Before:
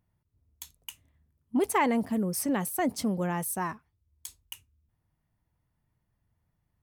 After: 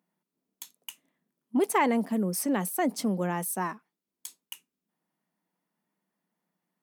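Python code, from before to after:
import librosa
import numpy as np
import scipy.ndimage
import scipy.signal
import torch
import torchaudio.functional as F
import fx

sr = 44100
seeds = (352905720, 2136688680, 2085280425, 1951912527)

y = scipy.signal.sosfilt(scipy.signal.ellip(4, 1.0, 40, 180.0, 'highpass', fs=sr, output='sos'), x)
y = F.gain(torch.from_numpy(y), 1.5).numpy()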